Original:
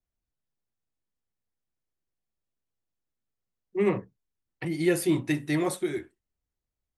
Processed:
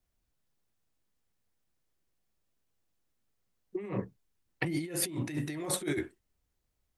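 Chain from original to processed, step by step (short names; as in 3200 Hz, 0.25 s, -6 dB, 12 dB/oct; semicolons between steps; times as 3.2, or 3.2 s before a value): negative-ratio compressor -35 dBFS, ratio -1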